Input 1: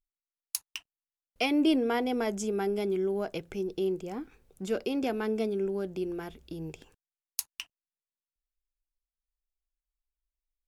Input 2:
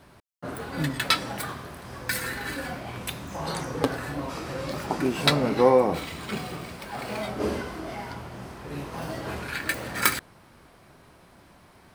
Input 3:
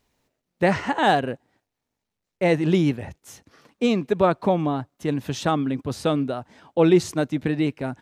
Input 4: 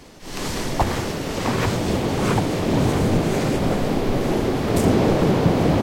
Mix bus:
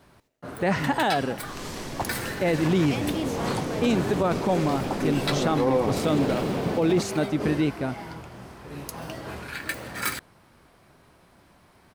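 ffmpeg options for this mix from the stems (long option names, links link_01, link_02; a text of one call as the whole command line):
ffmpeg -i stem1.wav -i stem2.wav -i stem3.wav -i stem4.wav -filter_complex "[0:a]adelay=1500,volume=-6dB[link_01];[1:a]volume=-3dB[link_02];[2:a]volume=-0.5dB[link_03];[3:a]acrossover=split=130|3000[link_04][link_05][link_06];[link_04]acompressor=threshold=-30dB:ratio=6[link_07];[link_07][link_05][link_06]amix=inputs=3:normalize=0,adelay=1200,volume=-9dB[link_08];[link_01][link_02][link_03][link_08]amix=inputs=4:normalize=0,alimiter=limit=-14dB:level=0:latency=1:release=10" out.wav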